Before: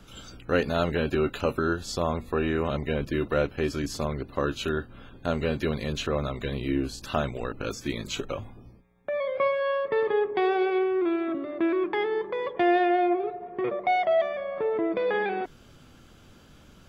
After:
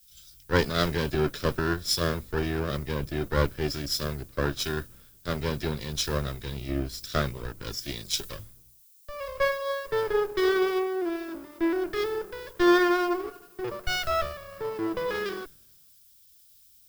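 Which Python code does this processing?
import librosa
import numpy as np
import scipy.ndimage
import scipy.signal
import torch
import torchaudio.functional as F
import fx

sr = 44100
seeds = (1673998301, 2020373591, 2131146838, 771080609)

y = fx.lower_of_two(x, sr, delay_ms=0.55)
y = fx.graphic_eq_31(y, sr, hz=(250, 800, 2000, 5000), db=(-7, -7, -4, 11))
y = fx.dmg_noise_colour(y, sr, seeds[0], colour='violet', level_db=-49.0)
y = fx.band_widen(y, sr, depth_pct=100)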